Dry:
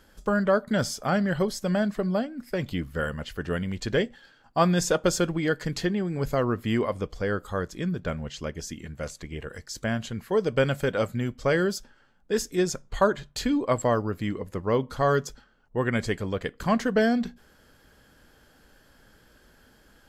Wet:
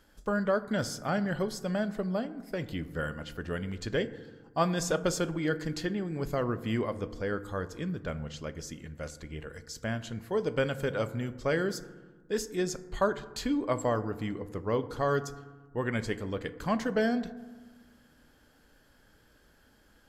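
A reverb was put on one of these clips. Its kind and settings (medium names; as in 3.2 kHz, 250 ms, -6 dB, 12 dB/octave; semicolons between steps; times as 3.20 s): FDN reverb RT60 1.3 s, low-frequency decay 1.45×, high-frequency decay 0.35×, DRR 12 dB; trim -5.5 dB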